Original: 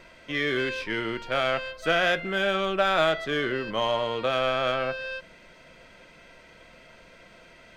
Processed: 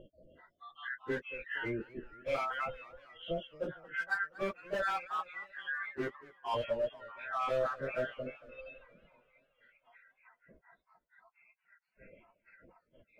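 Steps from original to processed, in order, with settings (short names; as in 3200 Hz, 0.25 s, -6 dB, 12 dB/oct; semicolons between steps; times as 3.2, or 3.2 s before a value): random spectral dropouts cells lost 79%; reverb removal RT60 2 s; LPF 2300 Hz 24 dB/oct; hard clip -25.5 dBFS, distortion -13 dB; plain phase-vocoder stretch 1.7×; warbling echo 0.232 s, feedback 60%, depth 174 cents, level -20 dB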